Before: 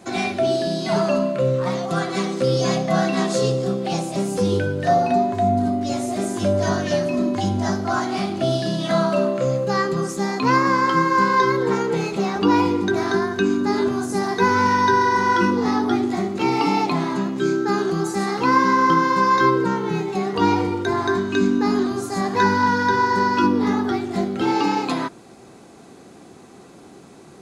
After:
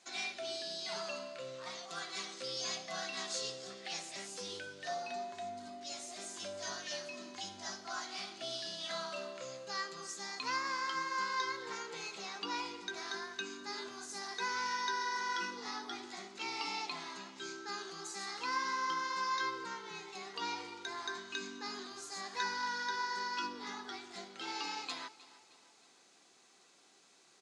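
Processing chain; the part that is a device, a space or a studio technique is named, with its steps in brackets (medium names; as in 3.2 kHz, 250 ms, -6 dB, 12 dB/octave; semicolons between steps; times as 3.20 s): low-pass 6 kHz 12 dB/octave; 3.70–4.27 s: peaking EQ 1.9 kHz +12 dB 0.44 oct; piezo pickup straight into a mixer (low-pass 8.4 kHz 12 dB/octave; differentiator); feedback delay 311 ms, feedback 47%, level -18.5 dB; trim -2.5 dB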